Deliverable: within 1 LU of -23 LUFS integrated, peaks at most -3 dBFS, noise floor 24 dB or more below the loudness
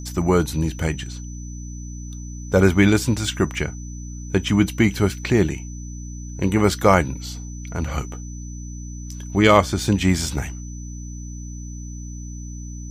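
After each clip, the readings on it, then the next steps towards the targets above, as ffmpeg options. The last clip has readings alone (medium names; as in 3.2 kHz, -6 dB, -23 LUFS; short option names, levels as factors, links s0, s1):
hum 60 Hz; highest harmonic 300 Hz; hum level -30 dBFS; steady tone 6 kHz; tone level -42 dBFS; loudness -20.5 LUFS; peak level -1.5 dBFS; loudness target -23.0 LUFS
-> -af "bandreject=f=60:t=h:w=4,bandreject=f=120:t=h:w=4,bandreject=f=180:t=h:w=4,bandreject=f=240:t=h:w=4,bandreject=f=300:t=h:w=4"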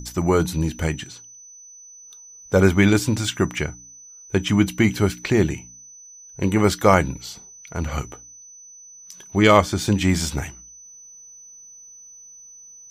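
hum not found; steady tone 6 kHz; tone level -42 dBFS
-> -af "bandreject=f=6000:w=30"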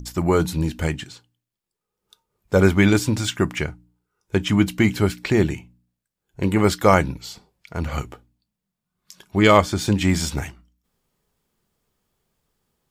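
steady tone not found; loudness -20.5 LUFS; peak level -2.0 dBFS; loudness target -23.0 LUFS
-> -af "volume=0.75"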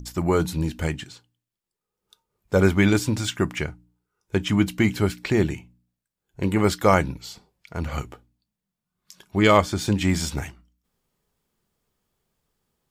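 loudness -23.0 LUFS; peak level -4.5 dBFS; noise floor -86 dBFS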